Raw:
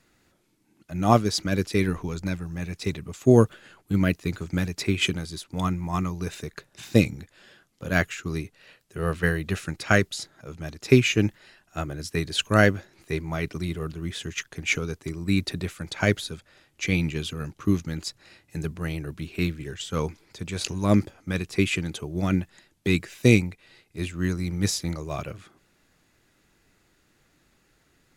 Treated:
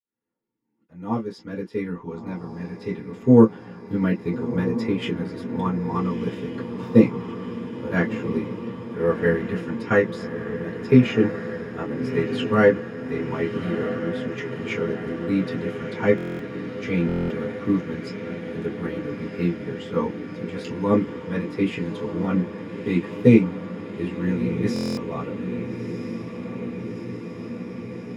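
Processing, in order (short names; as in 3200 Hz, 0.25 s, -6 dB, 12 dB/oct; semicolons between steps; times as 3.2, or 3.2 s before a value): opening faded in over 3.58 s; diffused feedback echo 1.303 s, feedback 77%, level -10 dB; reverb, pre-delay 3 ms, DRR -6.5 dB; stuck buffer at 16.16/17.07/24.74, samples 1024, times 9; gain -17.5 dB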